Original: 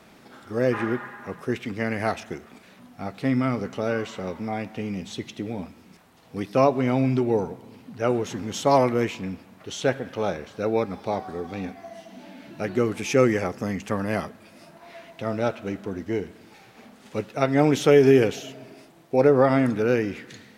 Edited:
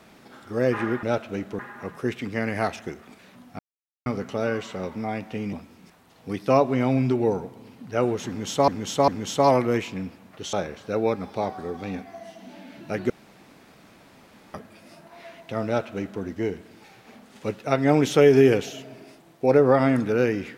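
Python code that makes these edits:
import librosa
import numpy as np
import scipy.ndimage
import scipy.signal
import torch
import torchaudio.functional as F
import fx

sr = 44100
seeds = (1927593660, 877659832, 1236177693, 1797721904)

y = fx.edit(x, sr, fx.silence(start_s=3.03, length_s=0.47),
    fx.cut(start_s=4.97, length_s=0.63),
    fx.repeat(start_s=8.35, length_s=0.4, count=3),
    fx.cut(start_s=9.8, length_s=0.43),
    fx.room_tone_fill(start_s=12.8, length_s=1.44),
    fx.duplicate(start_s=15.36, length_s=0.56, to_s=1.03), tone=tone)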